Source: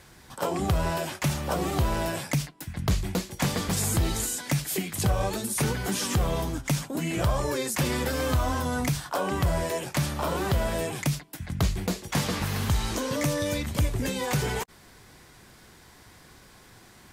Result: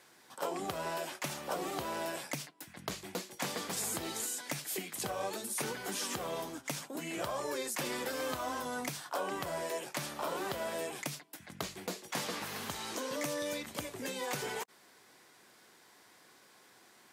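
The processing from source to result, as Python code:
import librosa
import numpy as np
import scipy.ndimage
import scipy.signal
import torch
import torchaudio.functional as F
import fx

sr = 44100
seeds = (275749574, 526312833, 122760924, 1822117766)

y = scipy.signal.sosfilt(scipy.signal.butter(2, 310.0, 'highpass', fs=sr, output='sos'), x)
y = y * 10.0 ** (-7.0 / 20.0)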